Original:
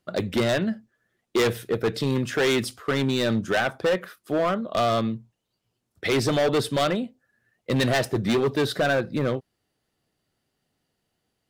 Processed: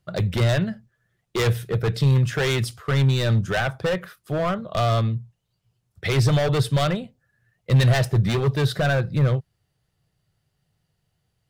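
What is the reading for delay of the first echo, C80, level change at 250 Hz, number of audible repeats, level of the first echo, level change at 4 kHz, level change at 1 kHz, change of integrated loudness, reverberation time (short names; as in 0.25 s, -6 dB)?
none, none, -1.5 dB, none, none, 0.0 dB, -0.5 dB, +2.5 dB, none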